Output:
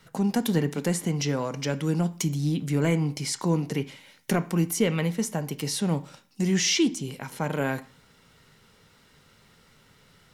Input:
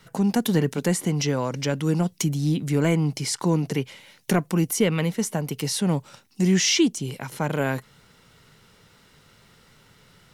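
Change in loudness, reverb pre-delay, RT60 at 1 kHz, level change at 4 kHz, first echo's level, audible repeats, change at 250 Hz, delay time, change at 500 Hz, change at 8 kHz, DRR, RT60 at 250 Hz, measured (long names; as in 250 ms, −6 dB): −3.0 dB, 3 ms, 0.45 s, −3.0 dB, no echo audible, no echo audible, −3.0 dB, no echo audible, −3.0 dB, −3.0 dB, 10.5 dB, 0.45 s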